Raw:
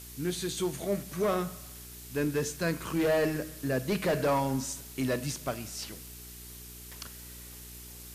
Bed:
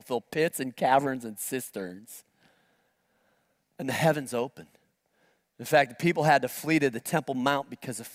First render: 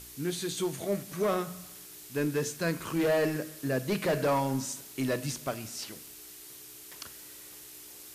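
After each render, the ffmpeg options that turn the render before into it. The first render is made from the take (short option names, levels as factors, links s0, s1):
-af "bandreject=f=60:t=h:w=4,bandreject=f=120:t=h:w=4,bandreject=f=180:t=h:w=4,bandreject=f=240:t=h:w=4"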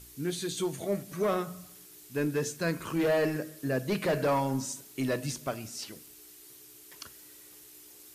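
-af "afftdn=nr=6:nf=-49"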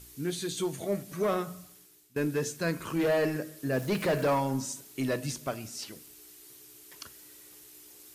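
-filter_complex "[0:a]asettb=1/sr,asplit=3[s0][s1][s2];[s0]atrim=end=3.734[s3];[s1]atrim=start=3.73:end=4.35,asetpts=PTS-STARTPTS,afade=t=in:d=0.004:c=qsin,afade=t=out:st=0.616:d=0.004:c=qsin,aeval=exprs='val(0)+0.5*0.00944*sgn(val(0))':c=same[s4];[s2]atrim=start=4.346[s5];[s3][s4]acrossfade=d=0.004:c1=hsin:c2=qsin[s6];[s6][s5]acrossfade=d=0.004:c1=qsin:c2=hsin,asplit=2[s7][s8];[s7]atrim=end=2.16,asetpts=PTS-STARTPTS,afade=t=out:st=1.5:d=0.66:silence=0.133352[s9];[s8]atrim=start=2.16,asetpts=PTS-STARTPTS,afade=t=in:d=0.004:c=hsin:silence=0.133352[s10];[s9][s10]concat=n=2:v=0:a=1"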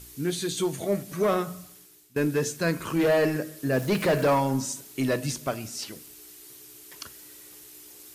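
-af "volume=1.68"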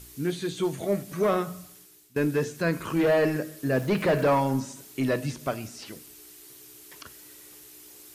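-filter_complex "[0:a]acrossover=split=3200[s0][s1];[s1]acompressor=threshold=0.00708:ratio=4:attack=1:release=60[s2];[s0][s2]amix=inputs=2:normalize=0"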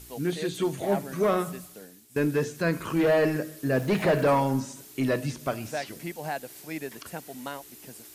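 -filter_complex "[1:a]volume=0.266[s0];[0:a][s0]amix=inputs=2:normalize=0"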